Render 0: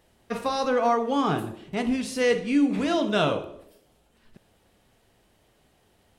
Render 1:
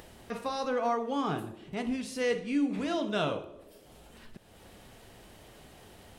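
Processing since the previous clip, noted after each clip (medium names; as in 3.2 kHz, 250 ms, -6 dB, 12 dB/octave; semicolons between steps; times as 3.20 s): upward compressor, threshold -30 dBFS; trim -7 dB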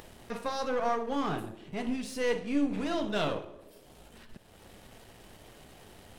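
partial rectifier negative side -7 dB; trim +2.5 dB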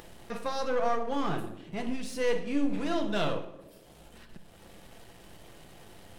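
reverberation RT60 0.75 s, pre-delay 6 ms, DRR 11 dB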